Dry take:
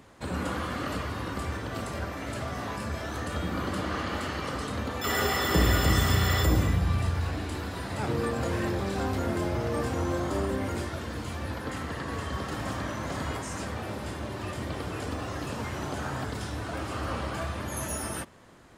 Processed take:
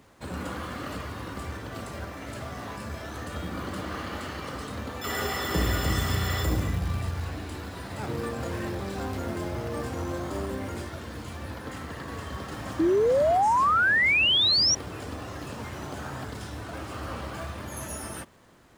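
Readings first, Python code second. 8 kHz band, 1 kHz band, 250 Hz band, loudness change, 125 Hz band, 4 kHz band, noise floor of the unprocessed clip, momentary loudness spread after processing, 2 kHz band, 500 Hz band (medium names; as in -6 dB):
+1.5 dB, +3.5 dB, -1.5 dB, +2.5 dB, -3.0 dB, +8.5 dB, -37 dBFS, 17 LU, +5.0 dB, +2.5 dB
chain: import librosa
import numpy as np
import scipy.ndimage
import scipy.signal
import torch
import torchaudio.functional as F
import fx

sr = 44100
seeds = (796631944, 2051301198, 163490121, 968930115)

p1 = fx.quant_companded(x, sr, bits=4)
p2 = x + F.gain(torch.from_numpy(p1), -6.5).numpy()
p3 = fx.spec_paint(p2, sr, seeds[0], shape='rise', start_s=12.79, length_s=1.96, low_hz=310.0, high_hz=5900.0, level_db=-15.0)
y = F.gain(torch.from_numpy(p3), -6.5).numpy()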